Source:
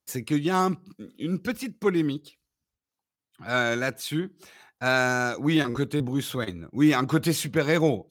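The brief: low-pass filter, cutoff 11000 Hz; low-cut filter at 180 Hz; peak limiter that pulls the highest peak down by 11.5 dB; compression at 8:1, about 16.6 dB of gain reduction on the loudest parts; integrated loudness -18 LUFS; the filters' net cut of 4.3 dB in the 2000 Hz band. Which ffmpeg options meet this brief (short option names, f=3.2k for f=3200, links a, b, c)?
-af "highpass=180,lowpass=11k,equalizer=f=2k:t=o:g=-6.5,acompressor=threshold=-35dB:ratio=8,volume=27dB,alimiter=limit=-8dB:level=0:latency=1"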